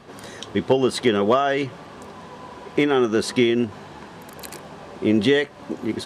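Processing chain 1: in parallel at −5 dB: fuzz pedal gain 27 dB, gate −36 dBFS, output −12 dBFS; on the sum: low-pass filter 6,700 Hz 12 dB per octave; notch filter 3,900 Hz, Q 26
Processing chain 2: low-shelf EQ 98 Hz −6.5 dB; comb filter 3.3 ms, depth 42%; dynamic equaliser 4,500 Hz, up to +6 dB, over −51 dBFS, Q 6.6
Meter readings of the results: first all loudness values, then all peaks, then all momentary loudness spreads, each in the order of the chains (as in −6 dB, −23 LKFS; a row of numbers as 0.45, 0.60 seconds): −16.5, −21.0 LKFS; −3.5, −4.5 dBFS; 21, 21 LU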